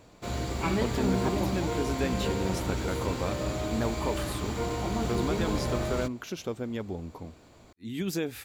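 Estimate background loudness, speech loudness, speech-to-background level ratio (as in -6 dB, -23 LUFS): -31.0 LUFS, -35.0 LUFS, -4.0 dB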